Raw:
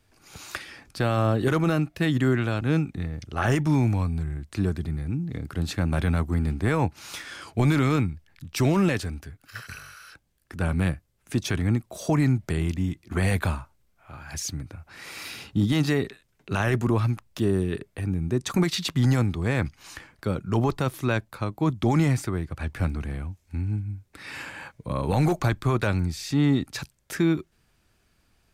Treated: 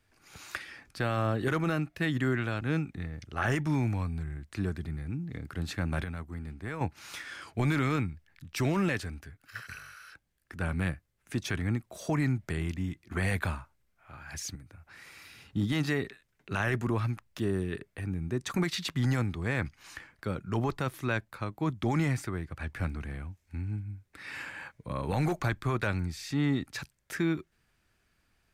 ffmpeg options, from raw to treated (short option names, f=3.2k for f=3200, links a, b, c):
-filter_complex "[0:a]asettb=1/sr,asplit=3[a][b][c];[a]atrim=end=14.554[d];[b]atrim=start=14.55:end=15.5,asetpts=PTS-STARTPTS,afade=t=in:d=0.004:c=qsin,afade=t=out:st=0.946:d=0.004:c=qsin,acrossover=split=150|6600[e][f][g];[e]acompressor=threshold=-42dB:ratio=4[h];[f]acompressor=threshold=-47dB:ratio=4[i];[g]acompressor=threshold=-55dB:ratio=4[j];[h][i][j]amix=inputs=3:normalize=0[k];[c]atrim=start=15.496[l];[d][k]acrossfade=d=0.004:c1=hsin:c2=qsin[m];[m][l]acrossfade=d=0.004:c1=qsin:c2=hsin,asplit=3[n][o][p];[n]atrim=end=6.042[q];[o]atrim=start=6.038:end=6.812,asetpts=PTS-STARTPTS,volume=-8dB[r];[p]atrim=start=6.808[s];[q][r]acrossfade=d=0.004:c1=hsin:c2=hsin[t];[t][s]acrossfade=d=0.004:c1=hsin:c2=hsin,equalizer=f=1.8k:t=o:w=1.1:g=5.5,volume=-7dB"